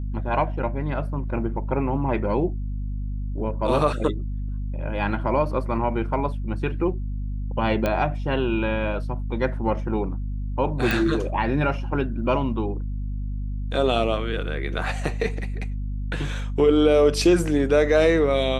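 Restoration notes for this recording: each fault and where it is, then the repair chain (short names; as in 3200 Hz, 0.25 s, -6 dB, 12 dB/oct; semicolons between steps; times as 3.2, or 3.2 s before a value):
hum 50 Hz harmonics 5 -28 dBFS
7.86 pop -11 dBFS
10.91 pop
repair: de-click; de-hum 50 Hz, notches 5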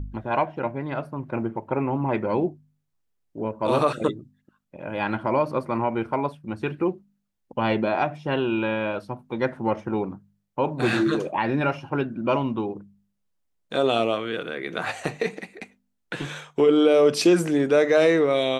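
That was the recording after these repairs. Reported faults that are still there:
none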